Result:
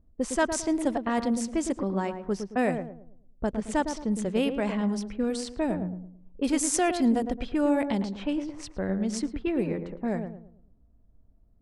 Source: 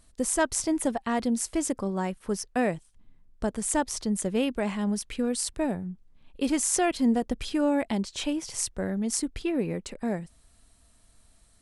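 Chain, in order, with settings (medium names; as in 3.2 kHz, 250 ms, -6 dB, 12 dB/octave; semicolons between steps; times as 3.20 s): level-controlled noise filter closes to 390 Hz, open at -21.5 dBFS; filtered feedback delay 110 ms, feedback 38%, low-pass 930 Hz, level -6 dB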